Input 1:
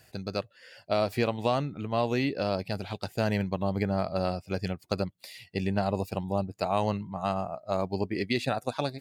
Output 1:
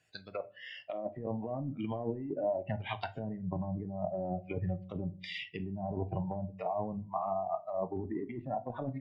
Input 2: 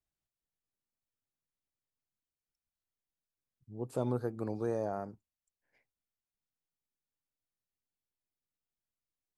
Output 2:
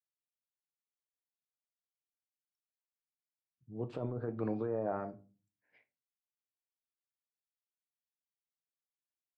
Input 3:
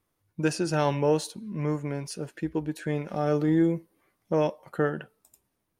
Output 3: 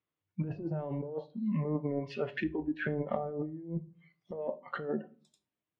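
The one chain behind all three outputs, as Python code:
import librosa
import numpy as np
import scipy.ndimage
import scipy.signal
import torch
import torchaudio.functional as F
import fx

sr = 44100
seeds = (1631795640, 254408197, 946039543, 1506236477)

y = fx.env_lowpass_down(x, sr, base_hz=580.0, full_db=-26.0)
y = fx.noise_reduce_blind(y, sr, reduce_db=20)
y = scipy.signal.sosfilt(scipy.signal.butter(2, 100.0, 'highpass', fs=sr, output='sos'), y)
y = fx.notch(y, sr, hz=850.0, q=20.0)
y = fx.over_compress(y, sr, threshold_db=-36.0, ratio=-1.0)
y = fx.lowpass_res(y, sr, hz=3000.0, q=1.9)
y = fx.room_shoebox(y, sr, seeds[0], volume_m3=200.0, walls='furnished', distance_m=0.45)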